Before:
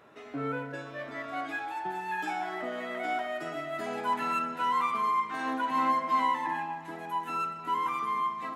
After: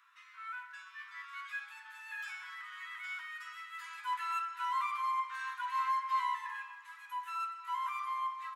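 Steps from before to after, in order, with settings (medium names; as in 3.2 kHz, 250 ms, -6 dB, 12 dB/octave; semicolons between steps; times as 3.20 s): steep high-pass 1 kHz 96 dB/octave; doubling 14 ms -10.5 dB; trim -5 dB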